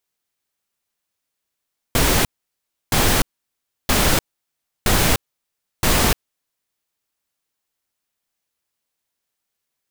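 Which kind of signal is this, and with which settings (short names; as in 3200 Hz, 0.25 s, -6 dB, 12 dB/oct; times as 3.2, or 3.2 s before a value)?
noise bursts pink, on 0.30 s, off 0.67 s, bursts 5, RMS -16 dBFS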